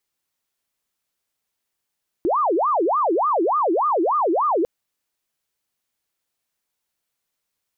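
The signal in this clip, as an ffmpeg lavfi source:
ffmpeg -f lavfi -i "aevalsrc='0.15*sin(2*PI*(776*t-454/(2*PI*3.4)*sin(2*PI*3.4*t)))':duration=2.4:sample_rate=44100" out.wav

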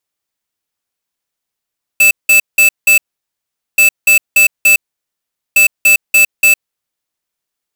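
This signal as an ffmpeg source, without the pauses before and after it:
ffmpeg -f lavfi -i "aevalsrc='0.447*(2*lt(mod(2630*t,1),0.5)-1)*clip(min(mod(mod(t,1.78),0.29),0.11-mod(mod(t,1.78),0.29))/0.005,0,1)*lt(mod(t,1.78),1.16)':duration=5.34:sample_rate=44100" out.wav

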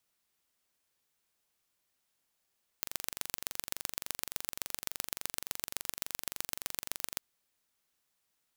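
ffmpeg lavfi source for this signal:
ffmpeg -f lavfi -i "aevalsrc='0.562*eq(mod(n,1877),0)*(0.5+0.5*eq(mod(n,5631),0))':duration=4.36:sample_rate=44100" out.wav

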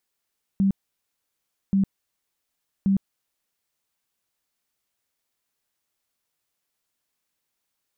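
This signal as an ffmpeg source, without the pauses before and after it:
ffmpeg -f lavfi -i "aevalsrc='0.15*sin(2*PI*195*mod(t,1.13))*lt(mod(t,1.13),21/195)':duration=3.39:sample_rate=44100" out.wav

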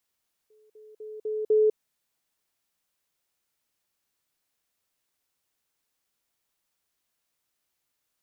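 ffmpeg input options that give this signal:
ffmpeg -f lavfi -i "aevalsrc='pow(10,(-57+10*floor(t/0.25))/20)*sin(2*PI*430*t)*clip(min(mod(t,0.25),0.2-mod(t,0.25))/0.005,0,1)':duration=1.25:sample_rate=44100" out.wav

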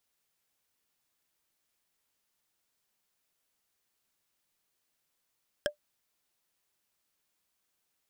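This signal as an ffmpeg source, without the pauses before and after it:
ffmpeg -f lavfi -i "aevalsrc='0.0794*pow(10,-3*t/0.11)*sin(2*PI*592*t)+0.0708*pow(10,-3*t/0.033)*sin(2*PI*1632.1*t)+0.0631*pow(10,-3*t/0.015)*sin(2*PI*3199.2*t)+0.0562*pow(10,-3*t/0.008)*sin(2*PI*5288.3*t)+0.0501*pow(10,-3*t/0.005)*sin(2*PI*7897.3*t)':duration=0.45:sample_rate=44100" out.wav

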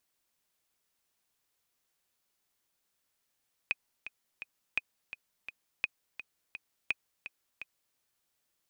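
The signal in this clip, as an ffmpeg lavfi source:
ffmpeg -f lavfi -i "aevalsrc='pow(10,(-15.5-12.5*gte(mod(t,3*60/169),60/169))/20)*sin(2*PI*2500*mod(t,60/169))*exp(-6.91*mod(t,60/169)/0.03)':duration=4.26:sample_rate=44100" out.wav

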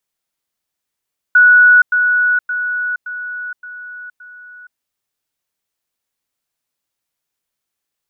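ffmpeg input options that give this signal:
ffmpeg -f lavfi -i "aevalsrc='pow(10,(-4.5-6*floor(t/0.57))/20)*sin(2*PI*1470*t)*clip(min(mod(t,0.57),0.47-mod(t,0.57))/0.005,0,1)':duration=3.42:sample_rate=44100" out.wav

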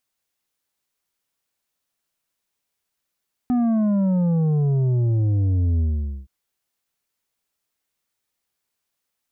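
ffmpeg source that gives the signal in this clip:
ffmpeg -f lavfi -i "aevalsrc='0.133*clip((2.77-t)/0.47,0,1)*tanh(2.24*sin(2*PI*250*2.77/log(65/250)*(exp(log(65/250)*t/2.77)-1)))/tanh(2.24)':duration=2.77:sample_rate=44100" out.wav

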